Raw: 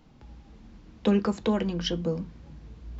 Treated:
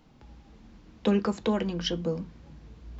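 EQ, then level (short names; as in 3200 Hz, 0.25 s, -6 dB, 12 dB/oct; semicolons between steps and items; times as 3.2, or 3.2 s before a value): low shelf 200 Hz -3.5 dB; 0.0 dB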